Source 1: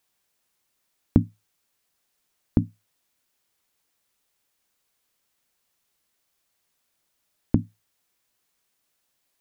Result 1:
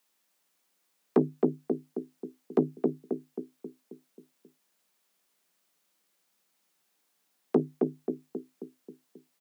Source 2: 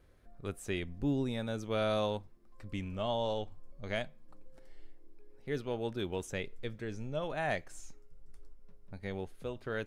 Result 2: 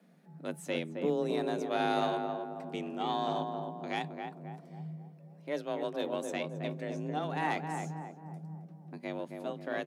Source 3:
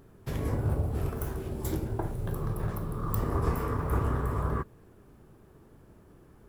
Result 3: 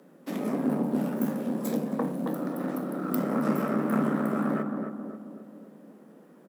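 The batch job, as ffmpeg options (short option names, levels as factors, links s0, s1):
-filter_complex "[0:a]asplit=2[s0][s1];[s1]adelay=268,lowpass=f=1100:p=1,volume=0.631,asplit=2[s2][s3];[s3]adelay=268,lowpass=f=1100:p=1,volume=0.53,asplit=2[s4][s5];[s5]adelay=268,lowpass=f=1100:p=1,volume=0.53,asplit=2[s6][s7];[s7]adelay=268,lowpass=f=1100:p=1,volume=0.53,asplit=2[s8][s9];[s9]adelay=268,lowpass=f=1100:p=1,volume=0.53,asplit=2[s10][s11];[s11]adelay=268,lowpass=f=1100:p=1,volume=0.53,asplit=2[s12][s13];[s13]adelay=268,lowpass=f=1100:p=1,volume=0.53[s14];[s0][s2][s4][s6][s8][s10][s12][s14]amix=inputs=8:normalize=0,aeval=exprs='(tanh(7.94*val(0)+0.65)-tanh(0.65))/7.94':c=same,afreqshift=150,volume=1.5"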